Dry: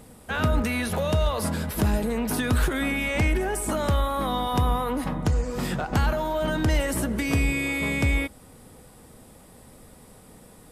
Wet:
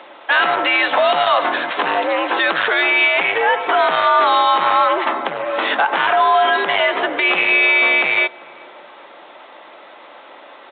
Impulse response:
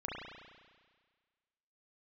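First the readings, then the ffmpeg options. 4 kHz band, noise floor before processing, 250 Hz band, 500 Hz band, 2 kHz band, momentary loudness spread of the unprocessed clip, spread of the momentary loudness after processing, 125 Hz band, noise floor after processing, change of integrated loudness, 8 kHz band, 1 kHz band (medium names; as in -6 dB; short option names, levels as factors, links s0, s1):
+14.0 dB, -50 dBFS, -3.5 dB, +9.5 dB, +15.5 dB, 3 LU, 7 LU, under -20 dB, -42 dBFS, +10.5 dB, under -40 dB, +15.5 dB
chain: -filter_complex "[0:a]aresample=16000,asoftclip=type=hard:threshold=0.0891,aresample=44100,highpass=650,asplit=2[s0][s1];[s1]adelay=392,lowpass=f=1100:p=1,volume=0.0708,asplit=2[s2][s3];[s3]adelay=392,lowpass=f=1100:p=1,volume=0.52,asplit=2[s4][s5];[s5]adelay=392,lowpass=f=1100:p=1,volume=0.52[s6];[s2][s4][s6]amix=inputs=3:normalize=0[s7];[s0][s7]amix=inputs=2:normalize=0,afreqshift=84,alimiter=level_in=12.6:limit=0.891:release=50:level=0:latency=1,volume=0.596" -ar 8000 -c:a pcm_mulaw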